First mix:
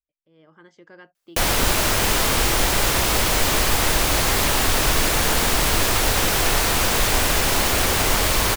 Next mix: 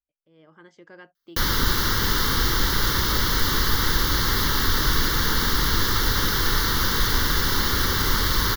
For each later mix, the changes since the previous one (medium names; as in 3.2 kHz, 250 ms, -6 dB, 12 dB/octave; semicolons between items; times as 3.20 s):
background: add static phaser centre 2.5 kHz, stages 6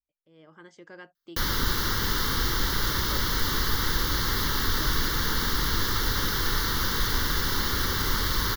speech: remove distance through air 68 m; background -4.5 dB